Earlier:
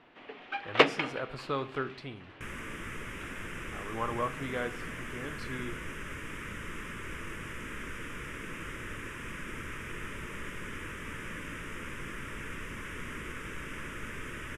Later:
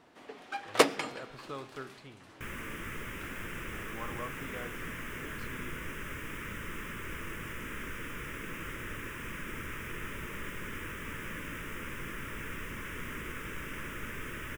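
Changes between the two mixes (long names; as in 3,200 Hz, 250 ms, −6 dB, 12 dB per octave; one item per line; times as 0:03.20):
speech −9.0 dB
first sound: remove low-pass with resonance 2,800 Hz, resonance Q 1.9
master: remove low-pass filter 11,000 Hz 24 dB per octave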